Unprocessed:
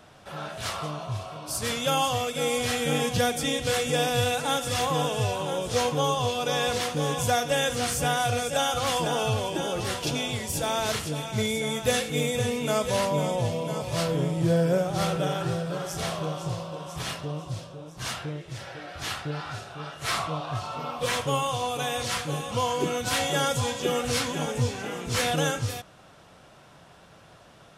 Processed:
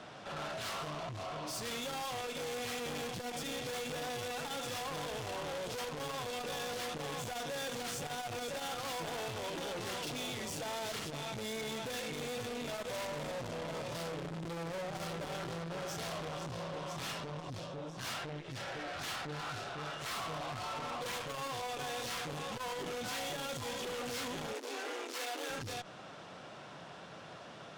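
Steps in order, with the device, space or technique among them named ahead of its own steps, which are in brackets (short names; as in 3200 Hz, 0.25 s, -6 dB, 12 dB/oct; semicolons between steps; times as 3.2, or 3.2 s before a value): valve radio (BPF 150–6000 Hz; tube stage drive 42 dB, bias 0.3; core saturation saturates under 200 Hz); 24.53–25.5 steep high-pass 260 Hz 96 dB/oct; gain +4.5 dB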